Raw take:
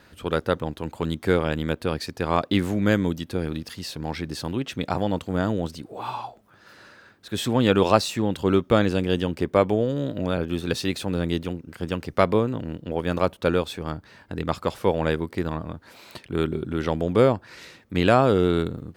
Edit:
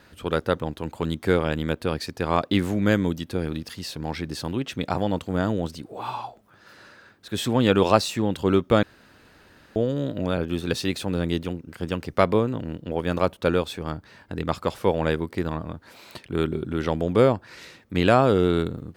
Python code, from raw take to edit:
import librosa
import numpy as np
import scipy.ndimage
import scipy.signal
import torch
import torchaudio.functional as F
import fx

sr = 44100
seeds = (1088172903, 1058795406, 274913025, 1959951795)

y = fx.edit(x, sr, fx.room_tone_fill(start_s=8.83, length_s=0.93), tone=tone)